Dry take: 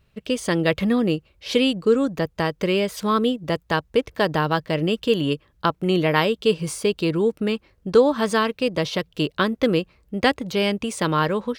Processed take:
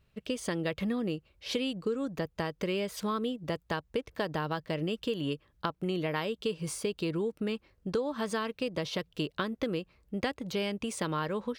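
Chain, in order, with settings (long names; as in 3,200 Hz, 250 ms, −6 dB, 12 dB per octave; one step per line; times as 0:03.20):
downward compressor 5 to 1, threshold −22 dBFS, peak gain reduction 11 dB
level −6.5 dB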